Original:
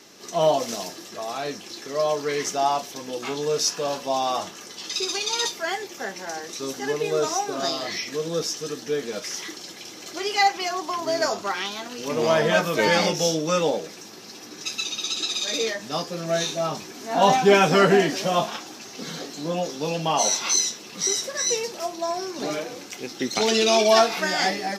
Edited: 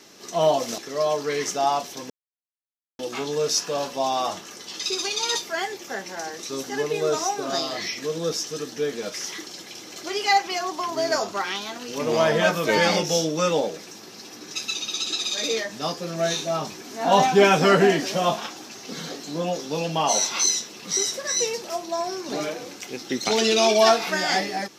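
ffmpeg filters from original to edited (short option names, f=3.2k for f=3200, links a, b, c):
-filter_complex "[0:a]asplit=3[a][b][c];[a]atrim=end=0.782[d];[b]atrim=start=1.768:end=3.09,asetpts=PTS-STARTPTS,afade=t=out:st=1.318:d=0.004:c=hsin,apad=pad_dur=0.89[e];[c]atrim=start=3.09,asetpts=PTS-STARTPTS,afade=t=in:d=0.004:c=hsin[f];[e][f]concat=n=2:v=0:a=1[g];[d][g]acrossfade=d=0.004:c1=hsin:c2=hsin"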